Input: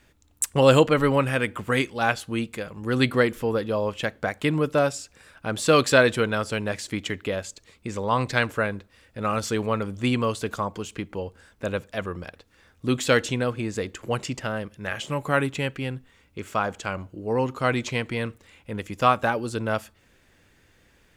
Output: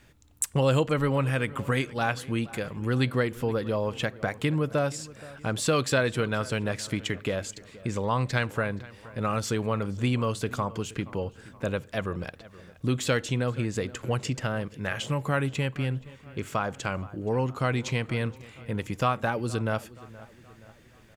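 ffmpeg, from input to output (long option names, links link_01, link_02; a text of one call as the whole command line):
ffmpeg -i in.wav -filter_complex "[0:a]equalizer=frequency=130:width_type=o:width=0.75:gain=6.5,acompressor=threshold=-28dB:ratio=2,asplit=2[link_01][link_02];[link_02]adelay=473,lowpass=frequency=3100:poles=1,volume=-19dB,asplit=2[link_03][link_04];[link_04]adelay=473,lowpass=frequency=3100:poles=1,volume=0.5,asplit=2[link_05][link_06];[link_06]adelay=473,lowpass=frequency=3100:poles=1,volume=0.5,asplit=2[link_07][link_08];[link_08]adelay=473,lowpass=frequency=3100:poles=1,volume=0.5[link_09];[link_03][link_05][link_07][link_09]amix=inputs=4:normalize=0[link_10];[link_01][link_10]amix=inputs=2:normalize=0,volume=1dB" out.wav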